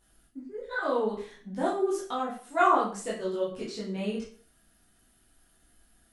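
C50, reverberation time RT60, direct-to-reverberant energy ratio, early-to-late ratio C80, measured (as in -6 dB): 5.0 dB, 0.45 s, -7.0 dB, 10.0 dB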